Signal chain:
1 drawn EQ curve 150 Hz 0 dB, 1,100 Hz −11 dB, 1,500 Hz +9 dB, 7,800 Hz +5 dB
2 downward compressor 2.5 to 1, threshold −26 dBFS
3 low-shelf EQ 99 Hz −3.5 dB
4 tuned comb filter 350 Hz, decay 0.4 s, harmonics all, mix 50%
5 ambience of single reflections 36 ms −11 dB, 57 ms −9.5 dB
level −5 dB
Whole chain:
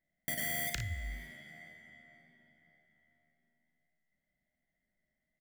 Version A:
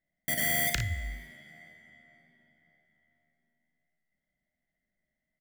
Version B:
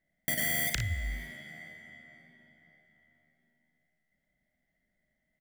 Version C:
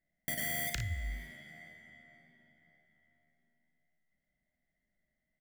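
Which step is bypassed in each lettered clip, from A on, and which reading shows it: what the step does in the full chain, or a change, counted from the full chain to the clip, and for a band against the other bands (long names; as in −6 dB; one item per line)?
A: 2, change in momentary loudness spread −5 LU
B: 4, 1 kHz band −4.0 dB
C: 3, 125 Hz band +2.0 dB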